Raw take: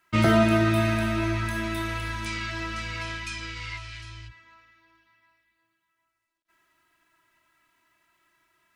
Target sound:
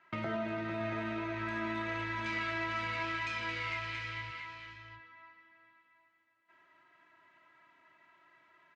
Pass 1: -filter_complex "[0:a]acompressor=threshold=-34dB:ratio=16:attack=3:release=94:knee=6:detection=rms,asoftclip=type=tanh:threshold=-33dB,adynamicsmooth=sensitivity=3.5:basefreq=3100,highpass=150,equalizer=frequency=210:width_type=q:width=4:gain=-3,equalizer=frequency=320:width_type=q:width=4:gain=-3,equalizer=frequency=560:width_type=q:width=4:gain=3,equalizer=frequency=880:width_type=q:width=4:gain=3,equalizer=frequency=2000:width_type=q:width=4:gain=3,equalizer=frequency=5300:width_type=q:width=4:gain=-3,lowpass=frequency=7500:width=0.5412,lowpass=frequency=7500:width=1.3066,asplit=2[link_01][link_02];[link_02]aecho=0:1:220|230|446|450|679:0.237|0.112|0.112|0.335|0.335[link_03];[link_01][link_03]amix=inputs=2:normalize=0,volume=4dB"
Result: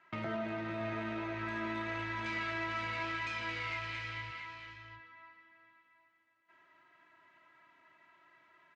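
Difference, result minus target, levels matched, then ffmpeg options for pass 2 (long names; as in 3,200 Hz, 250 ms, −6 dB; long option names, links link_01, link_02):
soft clipping: distortion +18 dB
-filter_complex "[0:a]acompressor=threshold=-34dB:ratio=16:attack=3:release=94:knee=6:detection=rms,asoftclip=type=tanh:threshold=-22.5dB,adynamicsmooth=sensitivity=3.5:basefreq=3100,highpass=150,equalizer=frequency=210:width_type=q:width=4:gain=-3,equalizer=frequency=320:width_type=q:width=4:gain=-3,equalizer=frequency=560:width_type=q:width=4:gain=3,equalizer=frequency=880:width_type=q:width=4:gain=3,equalizer=frequency=2000:width_type=q:width=4:gain=3,equalizer=frequency=5300:width_type=q:width=4:gain=-3,lowpass=frequency=7500:width=0.5412,lowpass=frequency=7500:width=1.3066,asplit=2[link_01][link_02];[link_02]aecho=0:1:220|230|446|450|679:0.237|0.112|0.112|0.335|0.335[link_03];[link_01][link_03]amix=inputs=2:normalize=0,volume=4dB"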